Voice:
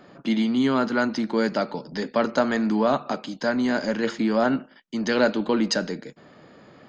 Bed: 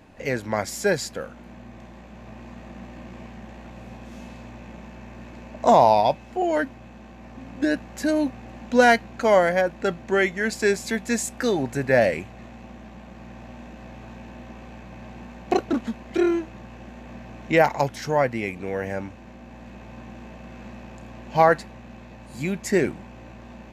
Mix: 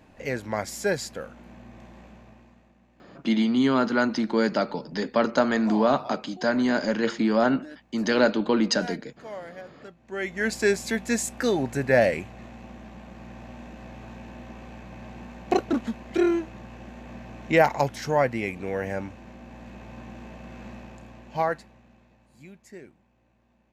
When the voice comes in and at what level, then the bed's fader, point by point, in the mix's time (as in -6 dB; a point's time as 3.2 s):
3.00 s, 0.0 dB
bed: 2.07 s -3.5 dB
2.79 s -21 dB
9.95 s -21 dB
10.42 s -1 dB
20.74 s -1 dB
22.82 s -24 dB